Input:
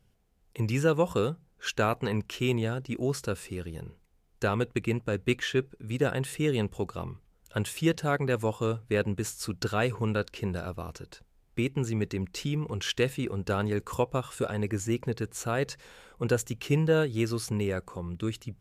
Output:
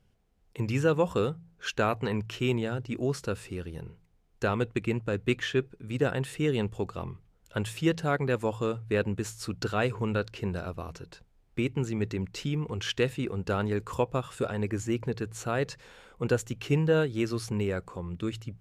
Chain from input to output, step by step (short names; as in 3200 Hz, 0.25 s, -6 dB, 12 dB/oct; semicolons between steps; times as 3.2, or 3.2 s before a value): high shelf 8500 Hz -9.5 dB; de-hum 55.61 Hz, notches 3